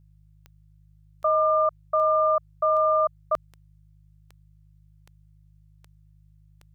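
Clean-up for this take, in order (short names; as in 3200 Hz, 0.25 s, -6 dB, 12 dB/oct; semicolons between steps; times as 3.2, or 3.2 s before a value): de-click; de-hum 51.4 Hz, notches 3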